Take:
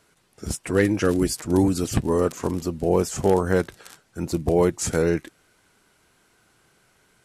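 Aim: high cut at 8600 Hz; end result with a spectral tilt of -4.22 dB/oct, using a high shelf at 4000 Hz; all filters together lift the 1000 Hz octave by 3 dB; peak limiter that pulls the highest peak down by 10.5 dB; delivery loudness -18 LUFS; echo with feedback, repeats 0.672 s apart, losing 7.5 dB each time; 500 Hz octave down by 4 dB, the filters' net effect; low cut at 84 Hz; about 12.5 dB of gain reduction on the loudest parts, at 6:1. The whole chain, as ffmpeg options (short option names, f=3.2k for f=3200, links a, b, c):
-af "highpass=84,lowpass=8.6k,equalizer=f=500:t=o:g=-6,equalizer=f=1k:t=o:g=5.5,highshelf=f=4k:g=3,acompressor=threshold=-29dB:ratio=6,alimiter=level_in=2.5dB:limit=-24dB:level=0:latency=1,volume=-2.5dB,aecho=1:1:672|1344|2016|2688|3360:0.422|0.177|0.0744|0.0312|0.0131,volume=19.5dB"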